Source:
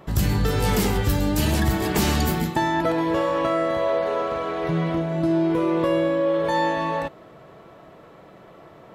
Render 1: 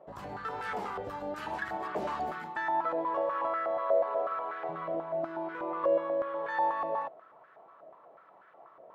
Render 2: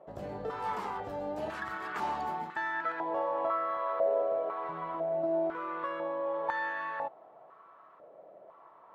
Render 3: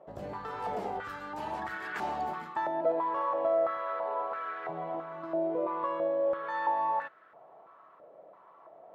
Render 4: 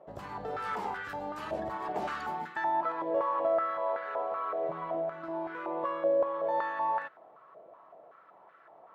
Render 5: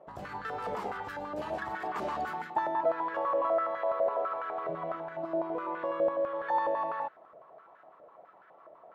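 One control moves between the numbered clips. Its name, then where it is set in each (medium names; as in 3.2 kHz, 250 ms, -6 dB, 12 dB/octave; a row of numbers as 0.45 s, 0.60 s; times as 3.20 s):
step-sequenced band-pass, rate: 8.2 Hz, 2 Hz, 3 Hz, 5.3 Hz, 12 Hz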